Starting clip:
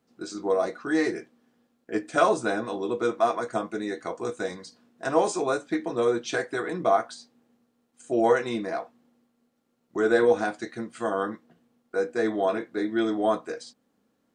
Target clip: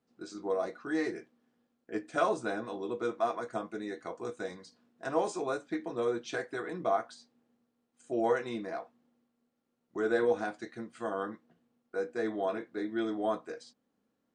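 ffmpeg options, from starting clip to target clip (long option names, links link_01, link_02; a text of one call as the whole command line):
ffmpeg -i in.wav -af "highshelf=frequency=7300:gain=-6.5,volume=-7.5dB" out.wav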